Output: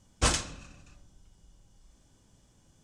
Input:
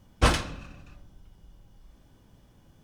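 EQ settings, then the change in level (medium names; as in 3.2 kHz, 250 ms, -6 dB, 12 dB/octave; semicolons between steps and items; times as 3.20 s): resonant low-pass 7.5 kHz, resonance Q 2.7; treble shelf 5.8 kHz +10 dB; -6.0 dB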